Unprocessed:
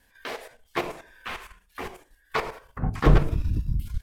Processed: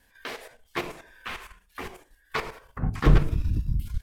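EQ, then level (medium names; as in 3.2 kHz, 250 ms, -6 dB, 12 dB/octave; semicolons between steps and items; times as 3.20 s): dynamic bell 670 Hz, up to -6 dB, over -40 dBFS, Q 0.88; 0.0 dB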